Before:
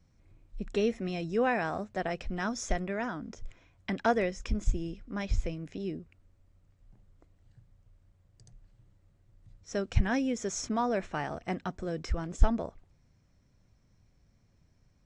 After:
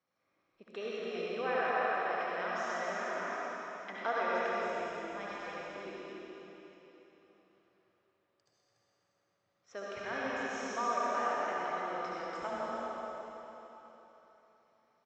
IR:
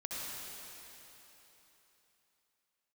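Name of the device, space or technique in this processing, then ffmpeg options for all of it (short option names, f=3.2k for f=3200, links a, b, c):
station announcement: -filter_complex "[0:a]highpass=500,lowpass=3.8k,equalizer=f=1.2k:t=o:w=0.21:g=8,aecho=1:1:125.4|288.6:0.355|0.501[a];[1:a]atrim=start_sample=2205[b];[a][b]afir=irnorm=-1:irlink=0,volume=-3dB"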